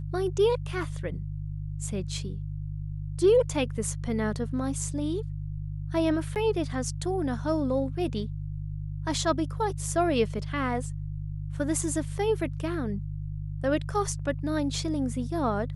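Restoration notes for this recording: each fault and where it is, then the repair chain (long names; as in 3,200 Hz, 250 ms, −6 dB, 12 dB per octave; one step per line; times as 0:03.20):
mains hum 50 Hz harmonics 3 −34 dBFS
0:06.35–0:06.36: drop-out 8.7 ms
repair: hum removal 50 Hz, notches 3
repair the gap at 0:06.35, 8.7 ms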